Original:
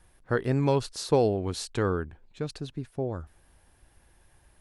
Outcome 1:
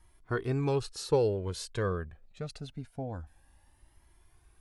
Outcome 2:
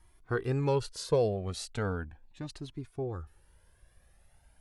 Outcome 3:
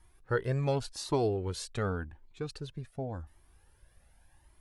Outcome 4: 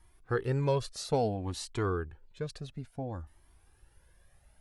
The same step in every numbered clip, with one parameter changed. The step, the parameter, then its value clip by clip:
Shepard-style flanger, rate: 0.25 Hz, 0.38 Hz, 0.89 Hz, 0.59 Hz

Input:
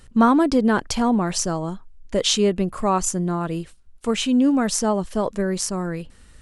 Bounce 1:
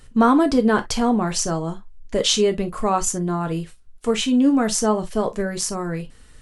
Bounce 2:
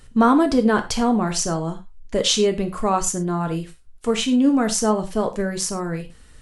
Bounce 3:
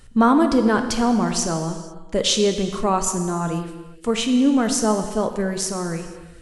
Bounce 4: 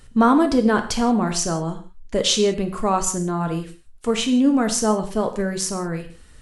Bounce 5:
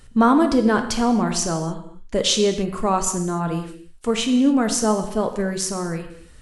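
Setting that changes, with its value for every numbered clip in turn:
gated-style reverb, gate: 80 ms, 130 ms, 510 ms, 200 ms, 310 ms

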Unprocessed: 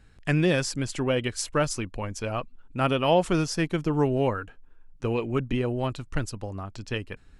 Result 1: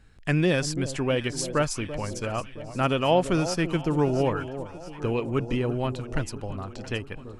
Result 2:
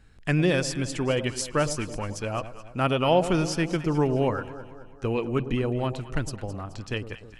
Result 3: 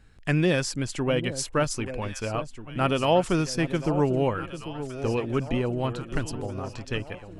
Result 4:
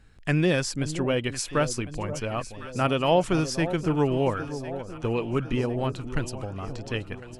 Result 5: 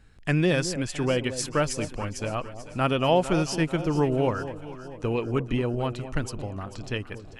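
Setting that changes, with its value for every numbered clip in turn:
echo whose repeats swap between lows and highs, time: 336 ms, 107 ms, 795 ms, 527 ms, 221 ms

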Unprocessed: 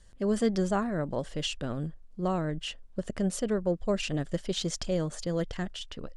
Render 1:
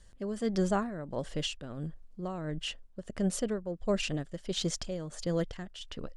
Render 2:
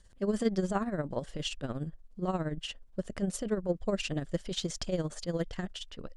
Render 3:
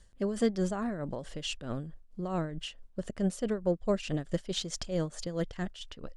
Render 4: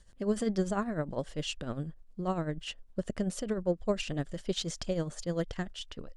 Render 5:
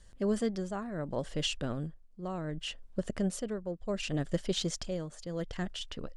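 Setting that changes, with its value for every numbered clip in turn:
tremolo, rate: 1.5 Hz, 17 Hz, 4.6 Hz, 10 Hz, 0.68 Hz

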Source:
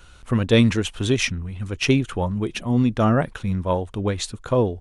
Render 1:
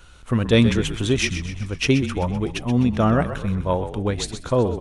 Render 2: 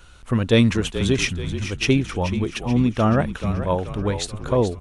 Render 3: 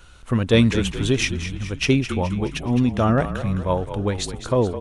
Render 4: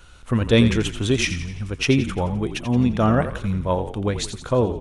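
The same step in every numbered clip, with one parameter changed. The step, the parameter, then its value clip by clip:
frequency-shifting echo, time: 127 ms, 431 ms, 211 ms, 86 ms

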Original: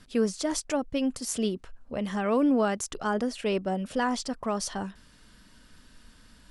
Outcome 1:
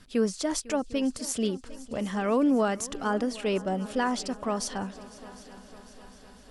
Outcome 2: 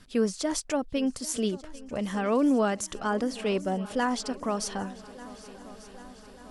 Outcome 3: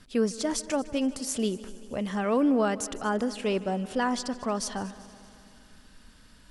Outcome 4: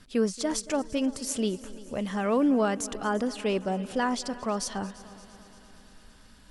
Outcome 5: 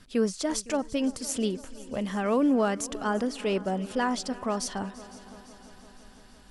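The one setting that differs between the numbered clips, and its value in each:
multi-head delay, time: 251 ms, 397 ms, 77 ms, 114 ms, 170 ms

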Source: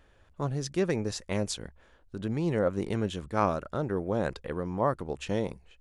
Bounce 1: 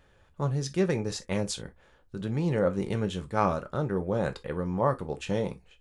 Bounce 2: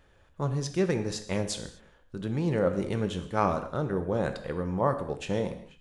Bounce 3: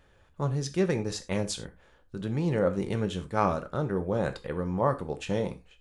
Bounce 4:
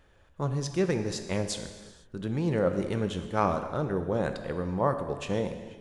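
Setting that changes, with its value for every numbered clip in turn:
gated-style reverb, gate: 80 ms, 270 ms, 120 ms, 530 ms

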